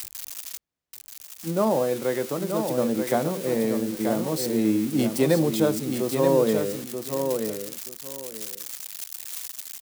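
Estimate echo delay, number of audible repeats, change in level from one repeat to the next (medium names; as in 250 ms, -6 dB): 932 ms, 2, -13.5 dB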